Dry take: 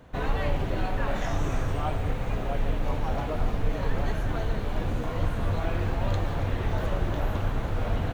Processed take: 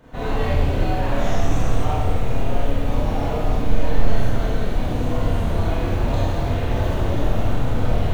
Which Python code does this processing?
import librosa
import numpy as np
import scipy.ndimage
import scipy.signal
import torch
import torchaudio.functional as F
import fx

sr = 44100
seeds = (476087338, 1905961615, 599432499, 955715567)

y = fx.rev_schroeder(x, sr, rt60_s=1.3, comb_ms=25, drr_db=-8.5)
y = fx.dynamic_eq(y, sr, hz=1500.0, q=0.8, threshold_db=-36.0, ratio=4.0, max_db=-5)
y = y * librosa.db_to_amplitude(-1.0)